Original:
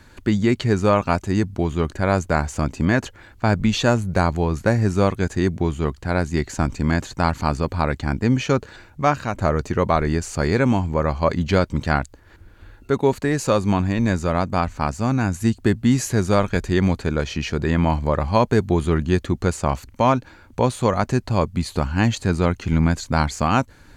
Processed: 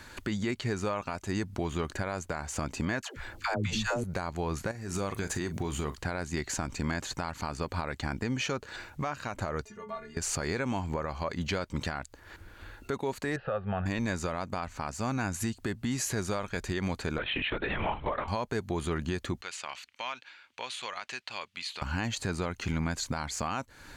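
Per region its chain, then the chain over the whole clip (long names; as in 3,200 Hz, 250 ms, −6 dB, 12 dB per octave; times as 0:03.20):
0:03.02–0:04.04: low-shelf EQ 67 Hz +9.5 dB + all-pass dispersion lows, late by 142 ms, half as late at 450 Hz
0:04.71–0:05.96: high-shelf EQ 9,800 Hz +9 dB + downward compressor 12 to 1, threshold −24 dBFS + double-tracking delay 40 ms −13.5 dB
0:09.65–0:10.17: downward compressor 3 to 1, threshold −28 dBFS + stiff-string resonator 210 Hz, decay 0.25 s, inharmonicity 0.008
0:13.36–0:13.86: Butterworth low-pass 2,600 Hz + phaser with its sweep stopped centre 1,500 Hz, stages 8
0:17.18–0:18.28: transient designer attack +10 dB, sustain +2 dB + low-shelf EQ 480 Hz −8.5 dB + linear-prediction vocoder at 8 kHz whisper
0:19.41–0:21.82: resonant band-pass 2,900 Hz, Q 1.8 + downward compressor 2.5 to 1, threshold −36 dBFS
whole clip: low-shelf EQ 460 Hz −9 dB; downward compressor, threshold −31 dBFS; brickwall limiter −25.5 dBFS; level +4 dB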